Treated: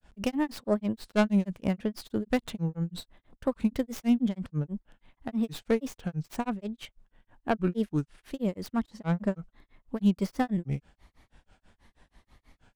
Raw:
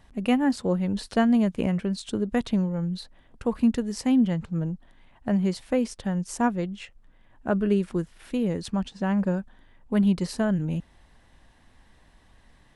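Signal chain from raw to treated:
stylus tracing distortion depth 0.33 ms
granular cloud 160 ms, grains 6.2 per second, spray 20 ms, pitch spread up and down by 3 semitones

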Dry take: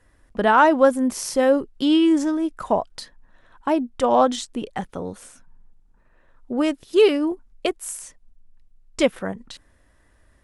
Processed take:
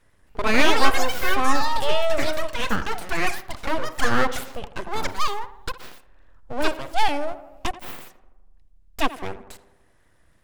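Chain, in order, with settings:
full-wave rectification
tape delay 83 ms, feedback 66%, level −12.5 dB, low-pass 1,900 Hz
delay with pitch and tempo change per echo 267 ms, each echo +6 semitones, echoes 3
level −1 dB

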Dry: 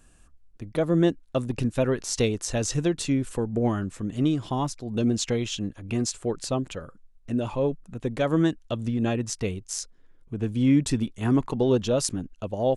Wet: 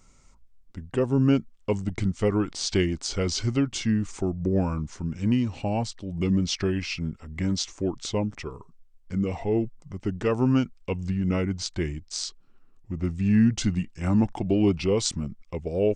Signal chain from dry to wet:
speed change −20%

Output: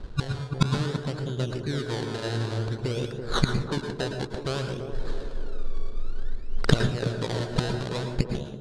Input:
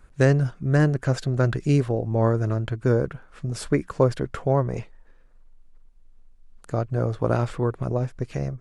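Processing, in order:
adaptive Wiener filter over 15 samples
in parallel at −1 dB: brickwall limiter −14 dBFS, peak gain reduction 9 dB
on the sum: downward compressor 6 to 1, threshold −16 dBFS, peak gain reduction 6.5 dB
gate with flip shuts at −22 dBFS, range −29 dB
sample-and-hold swept by an LFO 26×, swing 100% 0.56 Hz
graphic EQ with 15 bands 400 Hz +4 dB, 1,600 Hz +5 dB, 4,000 Hz +11 dB
feedback echo with a band-pass in the loop 335 ms, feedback 62%, band-pass 400 Hz, level −6 dB
automatic gain control gain up to 9 dB
low-pass filter 9,200 Hz 24 dB per octave
parametric band 2,100 Hz −4.5 dB 0.5 octaves
on a send at −5 dB: convolution reverb RT60 0.40 s, pre-delay 102 ms
on the sum: one half of a high-frequency compander decoder only
level +8 dB

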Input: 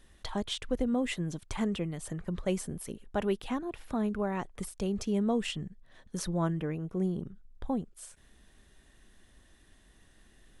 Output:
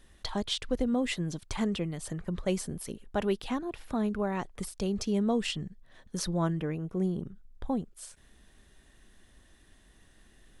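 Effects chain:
dynamic equaliser 4,600 Hz, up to +6 dB, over −60 dBFS, Q 1.9
level +1 dB

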